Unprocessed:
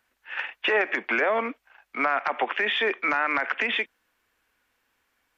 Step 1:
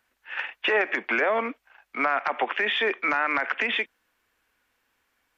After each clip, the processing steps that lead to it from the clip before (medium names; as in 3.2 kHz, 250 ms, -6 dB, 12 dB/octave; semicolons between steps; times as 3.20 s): no audible change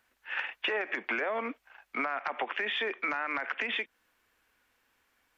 compression 6:1, threshold -29 dBFS, peak gain reduction 10 dB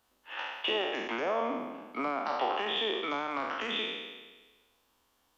spectral sustain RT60 1.33 s; high-order bell 1.9 kHz -10.5 dB 1 oct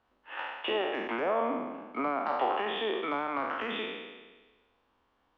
low-pass 2.2 kHz 12 dB/octave; trim +2 dB